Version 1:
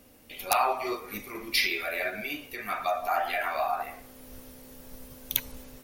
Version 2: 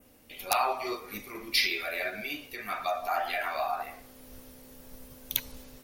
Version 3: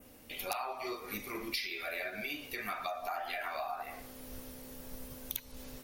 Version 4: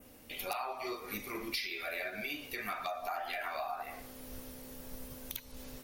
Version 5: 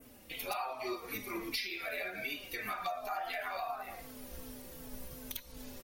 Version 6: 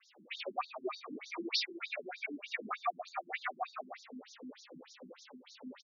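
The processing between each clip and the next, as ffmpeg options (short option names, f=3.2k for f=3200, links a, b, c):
-af "adynamicequalizer=threshold=0.00562:dfrequency=4400:dqfactor=1.4:tfrequency=4400:tqfactor=1.4:attack=5:release=100:ratio=0.375:range=2.5:mode=boostabove:tftype=bell,volume=-2.5dB"
-af "acompressor=threshold=-38dB:ratio=6,volume=2.5dB"
-af "volume=27.5dB,asoftclip=hard,volume=-27.5dB"
-filter_complex "[0:a]asplit=2[a][b];[b]adelay=4,afreqshift=-2.7[c];[a][c]amix=inputs=2:normalize=1,volume=3dB"
-filter_complex "[0:a]asplit=2[a][b];[b]adelay=110.8,volume=-14dB,highshelf=f=4k:g=-2.49[c];[a][c]amix=inputs=2:normalize=0,afftfilt=real='re*between(b*sr/1024,230*pow(5100/230,0.5+0.5*sin(2*PI*3.3*pts/sr))/1.41,230*pow(5100/230,0.5+0.5*sin(2*PI*3.3*pts/sr))*1.41)':imag='im*between(b*sr/1024,230*pow(5100/230,0.5+0.5*sin(2*PI*3.3*pts/sr))/1.41,230*pow(5100/230,0.5+0.5*sin(2*PI*3.3*pts/sr))*1.41)':win_size=1024:overlap=0.75,volume=6dB"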